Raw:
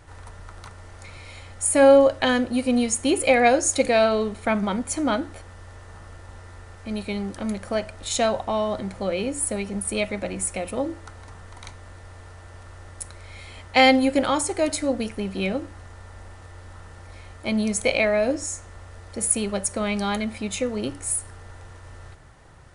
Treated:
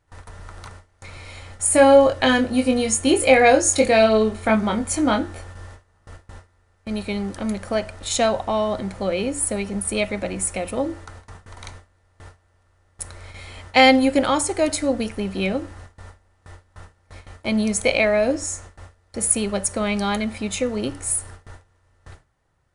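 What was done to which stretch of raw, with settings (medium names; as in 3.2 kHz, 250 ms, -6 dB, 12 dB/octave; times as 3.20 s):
1.69–5.67 s: doubling 23 ms -5 dB
whole clip: gate with hold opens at -32 dBFS; trim +2.5 dB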